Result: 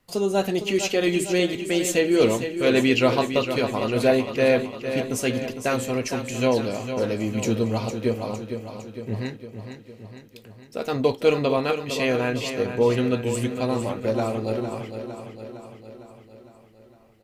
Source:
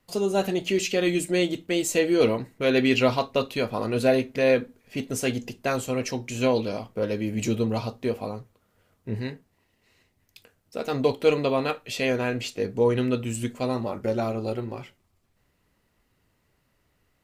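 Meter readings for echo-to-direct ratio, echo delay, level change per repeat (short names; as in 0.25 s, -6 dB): -7.0 dB, 0.457 s, -4.5 dB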